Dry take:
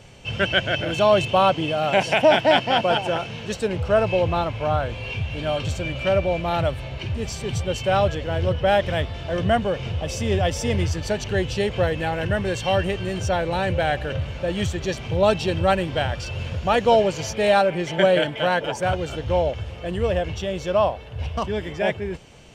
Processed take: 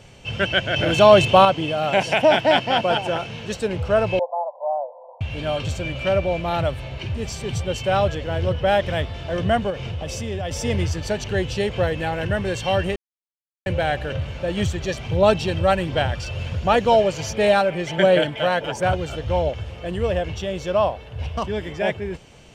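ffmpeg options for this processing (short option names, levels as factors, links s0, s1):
-filter_complex "[0:a]asettb=1/sr,asplit=3[s0][s1][s2];[s0]atrim=end=4.194[s3];[s1]atrim=start=4.19:end=5.21,asetpts=PTS-STARTPTS,afade=t=in:d=0.004:c=qsin,afade=t=out:st=1.016:d=0.004:c=qsin,asuperpass=centerf=720:order=12:qfactor=1.5[s4];[s2]atrim=start=5.206[s5];[s3][s4]acrossfade=d=0.004:c1=hsin:c2=qsin[s6];[s6][s5]acrossfade=d=0.004:c1=qsin:c2=hsin,asettb=1/sr,asplit=3[s7][s8][s9];[s7]atrim=end=9.704[s10];[s8]atrim=start=9.7:end=10.51,asetpts=PTS-STARTPTS,afade=t=in:d=0.004:c=qsin,afade=t=out:st=0.806:d=0.004:c=qsin,acompressor=threshold=0.0562:ratio=3:attack=3.2:release=140:knee=1:detection=peak[s11];[s9]atrim=start=10.506[s12];[s10][s11]acrossfade=d=0.004:c1=hsin:c2=qsin[s13];[s13][s12]acrossfade=d=0.004:c1=qsin:c2=hsin,asettb=1/sr,asplit=3[s14][s15][s16];[s14]atrim=end=14.574[s17];[s15]atrim=start=14.57:end=19.49,asetpts=PTS-STARTPTS,afade=t=in:d=0.004:c=qsin,afade=t=out:st=4.916:d=0.004:c=qsin,aphaser=in_gain=1:out_gain=1:delay=1.7:decay=0.24:speed=1.4:type=sinusoidal[s18];[s16]atrim=start=19.486[s19];[s17][s18]acrossfade=d=0.004:c1=hsin:c2=qsin[s20];[s20][s19]acrossfade=d=0.004:c1=qsin:c2=hsin,asplit=5[s21][s22][s23][s24][s25];[s21]atrim=end=0.762[s26];[s22]atrim=start=0.758:end=1.452,asetpts=PTS-STARTPTS,volume=1.88[s27];[s23]atrim=start=1.448:end=12.96,asetpts=PTS-STARTPTS,afade=t=out:st=11.508:d=0.004:c=hsin[s28];[s24]atrim=start=12.96:end=13.66,asetpts=PTS-STARTPTS,volume=0[s29];[s25]atrim=start=13.66,asetpts=PTS-STARTPTS,afade=t=in:d=0.004:c=hsin[s30];[s26][s27]acrossfade=d=0.004:c1=hsin:c2=hsin[s31];[s28][s29][s30]concat=n=3:v=0:a=1[s32];[s31][s32]acrossfade=d=0.004:c1=hsin:c2=hsin"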